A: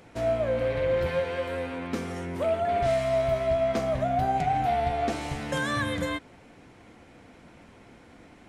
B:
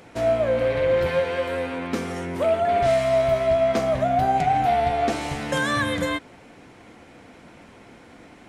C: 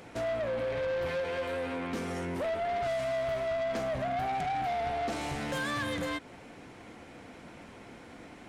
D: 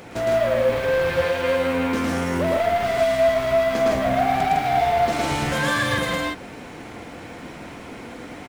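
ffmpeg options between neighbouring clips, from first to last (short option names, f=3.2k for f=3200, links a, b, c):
-af "lowshelf=f=120:g=-6.5,volume=5.5dB"
-filter_complex "[0:a]asplit=2[a][b];[b]acompressor=threshold=-29dB:ratio=6,volume=1.5dB[c];[a][c]amix=inputs=2:normalize=0,asoftclip=type=tanh:threshold=-20.5dB,volume=-8.5dB"
-af "acrusher=bits=7:mode=log:mix=0:aa=0.000001,aecho=1:1:110.8|157.4:0.891|0.794,volume=8dB"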